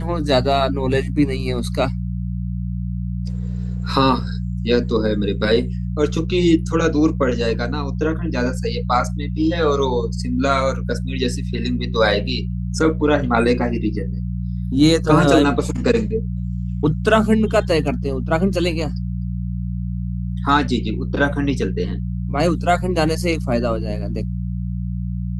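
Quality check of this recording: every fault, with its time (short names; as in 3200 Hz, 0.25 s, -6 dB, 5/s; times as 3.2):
hum 60 Hz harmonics 3 -24 dBFS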